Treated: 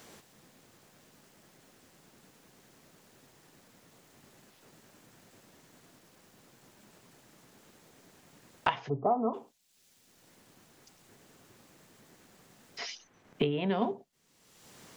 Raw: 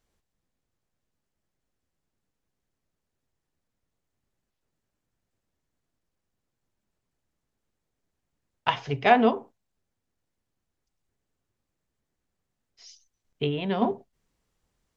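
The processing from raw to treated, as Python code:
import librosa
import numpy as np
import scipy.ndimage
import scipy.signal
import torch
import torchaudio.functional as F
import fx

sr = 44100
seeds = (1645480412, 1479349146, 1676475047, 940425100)

y = fx.cheby1_lowpass(x, sr, hz=1300.0, order=8, at=(8.88, 9.33), fade=0.02)
y = fx.band_squash(y, sr, depth_pct=100)
y = y * librosa.db_to_amplitude(-4.0)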